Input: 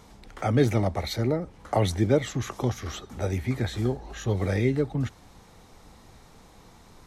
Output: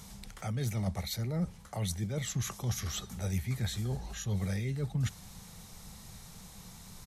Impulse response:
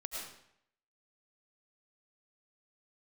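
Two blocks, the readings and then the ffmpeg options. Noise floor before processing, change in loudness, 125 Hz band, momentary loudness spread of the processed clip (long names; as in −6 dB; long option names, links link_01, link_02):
−53 dBFS, −8.0 dB, −5.5 dB, 16 LU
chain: -af "crystalizer=i=4.5:c=0,areverse,acompressor=threshold=-30dB:ratio=6,areverse,lowshelf=frequency=230:width_type=q:width=3:gain=6,aresample=32000,aresample=44100,volume=-5dB"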